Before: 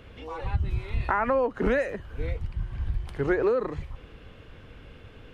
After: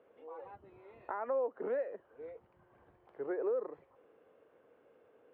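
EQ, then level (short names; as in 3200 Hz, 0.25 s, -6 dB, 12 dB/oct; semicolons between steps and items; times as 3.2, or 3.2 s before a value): ladder band-pass 610 Hz, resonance 30%; 0.0 dB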